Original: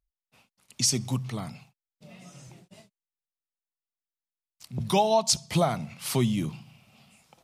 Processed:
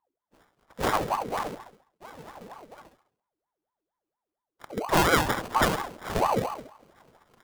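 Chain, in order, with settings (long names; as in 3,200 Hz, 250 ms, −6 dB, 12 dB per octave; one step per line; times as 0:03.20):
pitch shifter swept by a sawtooth −7.5 semitones, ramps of 401 ms
high-shelf EQ 5,400 Hz −5 dB
on a send: flutter between parallel walls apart 11.7 metres, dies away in 0.57 s
on the sum: decimation without filtering 25×
in parallel at +2 dB: speech leveller 2 s
on the sum: ring modulator whose carrier an LFO sweeps 660 Hz, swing 55%, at 4.3 Hz
level −3.5 dB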